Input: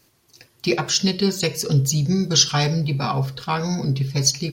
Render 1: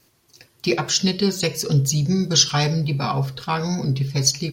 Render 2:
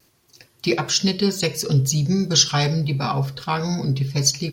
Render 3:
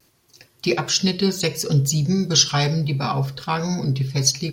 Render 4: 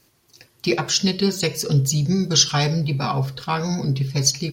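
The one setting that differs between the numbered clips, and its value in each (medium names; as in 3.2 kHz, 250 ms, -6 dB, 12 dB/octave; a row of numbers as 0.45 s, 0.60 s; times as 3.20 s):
vibrato, rate: 3.5 Hz, 1 Hz, 0.66 Hz, 8 Hz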